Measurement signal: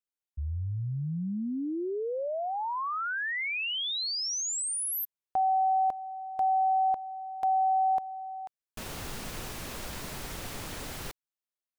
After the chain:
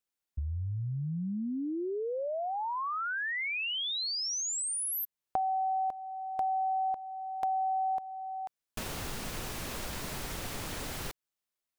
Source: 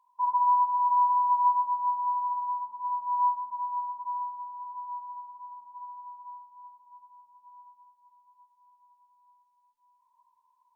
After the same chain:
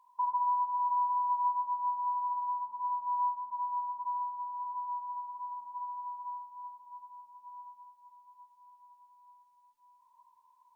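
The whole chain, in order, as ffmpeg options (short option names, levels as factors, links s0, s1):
-af "acompressor=threshold=0.00891:ratio=2:attack=34:release=715:knee=1:detection=peak,volume=1.58"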